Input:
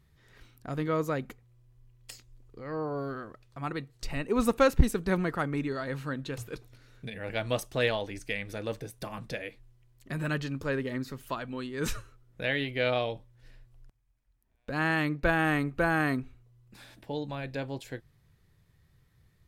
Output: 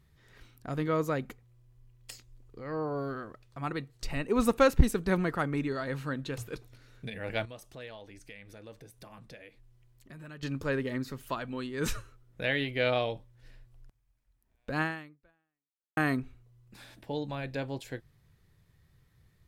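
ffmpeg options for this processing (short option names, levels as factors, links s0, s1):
-filter_complex "[0:a]asettb=1/sr,asplit=3[s0][s1][s2];[s0]atrim=end=7.454[s3];[s1]atrim=start=7.45:end=10.43,asetpts=PTS-STARTPTS,afade=t=in:d=0.004:c=qsin,afade=t=out:st=2.976:d=0.004:c=qsin,acompressor=threshold=0.00158:ratio=2:attack=3.2:release=140:knee=1:detection=peak[s4];[s2]atrim=start=10.426[s5];[s3][s4]acrossfade=d=0.004:c1=hsin:c2=qsin[s6];[s6][s5]acrossfade=d=0.004:c1=qsin:c2=hsin,asplit=2[s7][s8];[s7]atrim=end=15.97,asetpts=PTS-STARTPTS,afade=t=out:st=14.81:d=1.16:c=exp[s9];[s8]atrim=start=15.97,asetpts=PTS-STARTPTS,afade=t=in:d=0.004:c=hsin[s10];[s9][s10]concat=n=2:v=0:a=1"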